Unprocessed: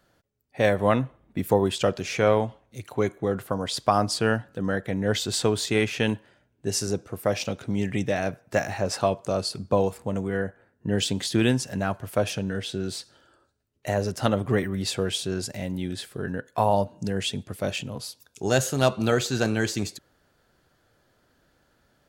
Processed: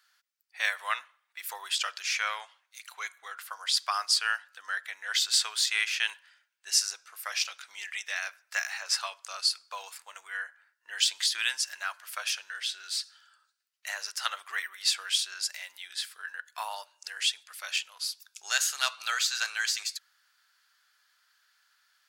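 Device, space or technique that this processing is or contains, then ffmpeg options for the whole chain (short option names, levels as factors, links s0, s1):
headphones lying on a table: -af "highpass=f=1300:w=0.5412,highpass=f=1300:w=1.3066,equalizer=f=4900:t=o:w=0.49:g=4.5,volume=1.19"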